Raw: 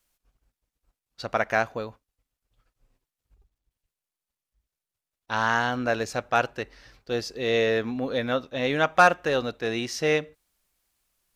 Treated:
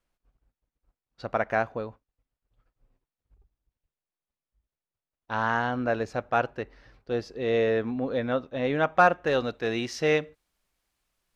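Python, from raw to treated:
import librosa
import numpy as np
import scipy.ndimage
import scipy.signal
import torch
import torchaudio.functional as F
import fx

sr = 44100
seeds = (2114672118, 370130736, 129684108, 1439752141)

y = fx.lowpass(x, sr, hz=fx.steps((0.0, 1300.0), (9.27, 4000.0)), slope=6)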